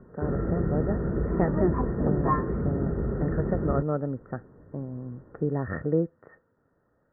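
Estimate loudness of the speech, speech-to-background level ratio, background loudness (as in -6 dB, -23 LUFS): -31.5 LUFS, -2.5 dB, -29.0 LUFS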